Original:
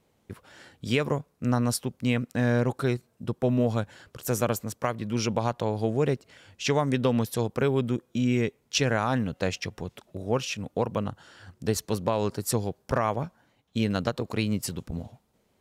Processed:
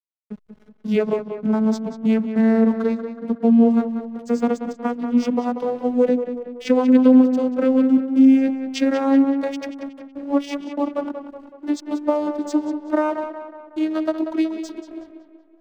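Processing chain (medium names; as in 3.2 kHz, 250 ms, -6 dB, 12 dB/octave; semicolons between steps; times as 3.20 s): vocoder on a note that slides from G#3, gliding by +8 st; hysteresis with a dead band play -47 dBFS; on a send: tape echo 186 ms, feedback 55%, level -8 dB, low-pass 3.5 kHz; on the sum: trim +8.5 dB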